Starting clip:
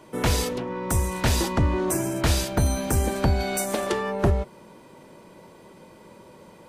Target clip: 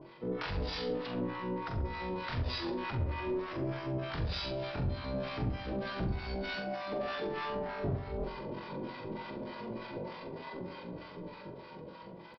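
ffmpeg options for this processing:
-filter_complex "[0:a]dynaudnorm=f=250:g=9:m=8dB,alimiter=limit=-14dB:level=0:latency=1:release=79,areverse,acompressor=threshold=-31dB:ratio=4,areverse,flanger=delay=5.9:depth=2.7:regen=-39:speed=0.3:shape=triangular,aresample=11025,asoftclip=type=hard:threshold=-36.5dB,aresample=44100,acrossover=split=760[a][b];[a]aeval=exprs='val(0)*(1-1/2+1/2*cos(2*PI*6.1*n/s))':c=same[c];[b]aeval=exprs='val(0)*(1-1/2-1/2*cos(2*PI*6.1*n/s))':c=same[d];[c][d]amix=inputs=2:normalize=0,atempo=0.54,asplit=2[e][f];[f]adelay=44,volume=-7dB[g];[e][g]amix=inputs=2:normalize=0,asplit=2[h][i];[i]adelay=67,lowpass=f=2.6k:p=1,volume=-10dB,asplit=2[j][k];[k]adelay=67,lowpass=f=2.6k:p=1,volume=0.53,asplit=2[l][m];[m]adelay=67,lowpass=f=2.6k:p=1,volume=0.53,asplit=2[n][o];[o]adelay=67,lowpass=f=2.6k:p=1,volume=0.53,asplit=2[p][q];[q]adelay=67,lowpass=f=2.6k:p=1,volume=0.53,asplit=2[r][s];[s]adelay=67,lowpass=f=2.6k:p=1,volume=0.53[t];[h][j][l][n][p][r][t]amix=inputs=7:normalize=0,volume=7.5dB"

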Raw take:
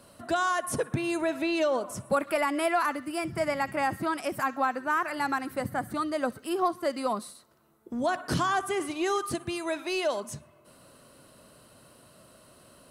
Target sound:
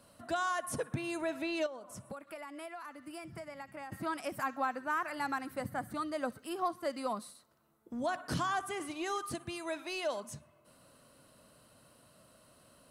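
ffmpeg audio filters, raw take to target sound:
-filter_complex "[0:a]equalizer=f=380:t=o:w=0.26:g=-6,asettb=1/sr,asplit=3[a][b][c];[a]atrim=end=1.664[d];[b]atrim=start=1.66:end=3.92,asetpts=PTS-STARTPTS,afade=t=in:d=0.004:c=qsin,afade=t=out:st=2.256:d=0.004:c=qsin,acompressor=threshold=-36dB:ratio=10[e];[c]atrim=start=3.916[f];[d][e]acrossfade=d=0.004:c1=hsin:c2=qsin[g];[g][f]acrossfade=d=0.004:c1=qsin:c2=hsin,volume=-6.5dB"

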